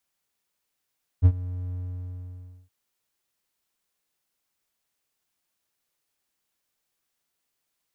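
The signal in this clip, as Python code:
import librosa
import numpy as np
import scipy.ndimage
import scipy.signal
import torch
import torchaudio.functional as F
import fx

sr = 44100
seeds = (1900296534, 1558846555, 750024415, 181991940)

y = fx.adsr_tone(sr, wave='triangle', hz=90.4, attack_ms=36.0, decay_ms=61.0, sustain_db=-19.0, held_s=0.51, release_ms=961.0, level_db=-8.0)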